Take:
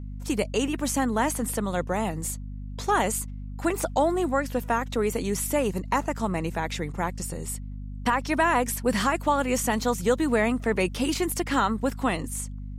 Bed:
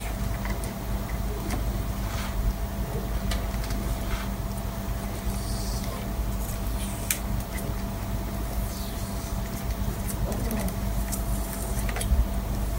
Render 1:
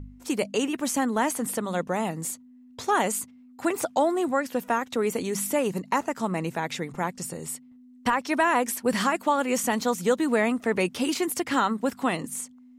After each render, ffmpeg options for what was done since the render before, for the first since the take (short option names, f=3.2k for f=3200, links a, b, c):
-af "bandreject=f=50:t=h:w=4,bandreject=f=100:t=h:w=4,bandreject=f=150:t=h:w=4,bandreject=f=200:t=h:w=4"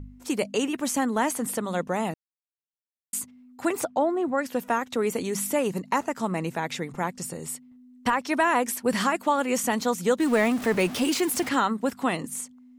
-filter_complex "[0:a]asplit=3[a][b][c];[a]afade=t=out:st=3.84:d=0.02[d];[b]lowpass=f=1.2k:p=1,afade=t=in:st=3.84:d=0.02,afade=t=out:st=4.37:d=0.02[e];[c]afade=t=in:st=4.37:d=0.02[f];[d][e][f]amix=inputs=3:normalize=0,asettb=1/sr,asplit=3[g][h][i];[g]atrim=end=10.204[j];[h]atrim=start=10.2:end=11.49,asetpts=PTS-STARTPTS,afade=t=in:d=0.004:c=qsin,afade=t=out:st=1.286:d=0.004:c=qsin,aeval=exprs='val(0)+0.5*0.0299*sgn(val(0))':c=same[k];[i]atrim=start=11.486[l];[j][k]acrossfade=d=0.004:c1=hsin:c2=qsin[m];[m][l]acrossfade=d=0.004:c1=qsin:c2=hsin,asplit=3[n][o][p];[n]atrim=end=2.14,asetpts=PTS-STARTPTS,afade=t=out:st=2.136:d=0.004:c=hsin[q];[o]atrim=start=2.14:end=3.13,asetpts=PTS-STARTPTS,volume=0[r];[p]atrim=start=3.13,asetpts=PTS-STARTPTS,afade=t=in:d=0.004:c=hsin[s];[q][r][s]concat=n=3:v=0:a=1"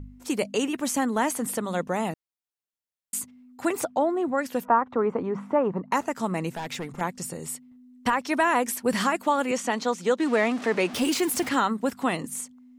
-filter_complex "[0:a]asettb=1/sr,asplit=3[a][b][c];[a]atrim=end=4.654[d];[b]atrim=start=4.65:end=5.92,asetpts=PTS-STARTPTS,afade=t=in:d=0.004:c=qsin,afade=t=out:st=1.266:d=0.004:c=qsin,lowpass=f=1.1k:t=q:w=2.5[e];[c]atrim=start=5.916[f];[d][e]acrossfade=d=0.004:c1=hsin:c2=qsin[g];[g][f]acrossfade=d=0.004:c1=qsin:c2=hsin,asettb=1/sr,asplit=3[h][i][j];[h]atrim=end=6.564[k];[i]atrim=start=6.56:end=7.01,asetpts=PTS-STARTPTS,afade=t=in:d=0.004:c=qsin,afade=t=out:st=0.446:d=0.004:c=qsin,asoftclip=type=hard:threshold=-28.5dB[l];[j]atrim=start=7.006[m];[k][l]acrossfade=d=0.004:c1=hsin:c2=qsin[n];[n][m]acrossfade=d=0.004:c1=qsin:c2=hsin,asettb=1/sr,asplit=3[o][p][q];[o]atrim=end=9.514[r];[p]atrim=start=9.51:end=10.94,asetpts=PTS-STARTPTS,afade=t=in:d=0.004:c=qsin,afade=t=out:st=1.426:d=0.004:c=qsin,highpass=240,lowpass=6.2k[s];[q]atrim=start=10.936[t];[r][s]acrossfade=d=0.004:c1=hsin:c2=qsin[u];[u][t]acrossfade=d=0.004:c1=qsin:c2=hsin"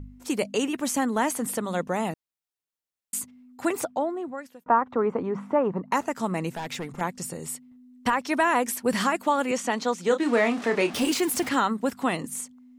-filter_complex "[0:a]asettb=1/sr,asplit=3[a][b][c];[a]atrim=end=10.044[d];[b]atrim=start=10.04:end=11.12,asetpts=PTS-STARTPTS,afade=t=in:d=0.004:c=qsin,afade=t=out:st=1.076:d=0.004:c=qsin,asplit=2[e][f];[f]adelay=30,volume=-8dB[g];[e][g]amix=inputs=2:normalize=0,atrim=end_sample=47628[h];[c]atrim=start=11.116[i];[d][h]acrossfade=d=0.004:c1=hsin:c2=qsin[j];[j][i]acrossfade=d=0.004:c1=qsin:c2=hsin,asplit=2[k][l];[k]atrim=end=4.66,asetpts=PTS-STARTPTS,afade=t=out:st=3.73:d=0.93[m];[l]atrim=start=4.66,asetpts=PTS-STARTPTS,afade=t=in:d=0.004:c=hsin[n];[m][n]concat=n=2:v=0:a=1"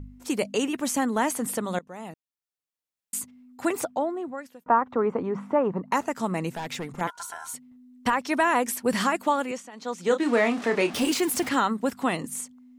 -filter_complex "[0:a]asettb=1/sr,asplit=3[a][b][c];[a]atrim=end=7.074[d];[b]atrim=start=7.07:end=7.54,asetpts=PTS-STARTPTS,afade=t=in:d=0.004:c=qsin,afade=t=out:st=0.466:d=0.004:c=qsin,aeval=exprs='val(0)*sin(2*PI*1200*n/s)':c=same[e];[c]atrim=start=7.536[f];[d][e]acrossfade=d=0.004:c1=hsin:c2=qsin[g];[g][f]acrossfade=d=0.004:c1=qsin:c2=hsin,asplit=3[h][i][j];[h]atrim=end=1.79,asetpts=PTS-STARTPTS,afade=t=out:st=1.786:d=0.004:c=hsin:silence=0.1[k];[i]atrim=start=1.79:end=9.71,asetpts=PTS-STARTPTS,afade=t=in:d=1.85:c=qsin:silence=0.1,afade=t=out:st=7.52:d=0.4:silence=0.0841395[l];[j]atrim=start=9.71,asetpts=PTS-STARTPTS,afade=t=in:d=0.4:silence=0.0841395[m];[k][l][m]concat=n=3:v=0:a=1"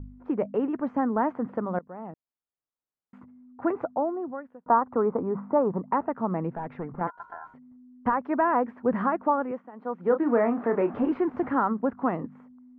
-af "lowpass=f=1.4k:w=0.5412,lowpass=f=1.4k:w=1.3066"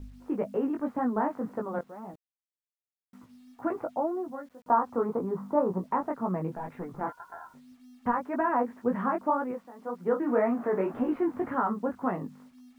-af "flanger=delay=16:depth=5:speed=1.9,acrusher=bits=10:mix=0:aa=0.000001"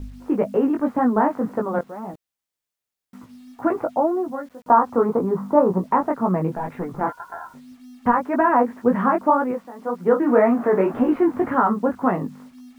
-af "volume=9.5dB,alimiter=limit=-3dB:level=0:latency=1"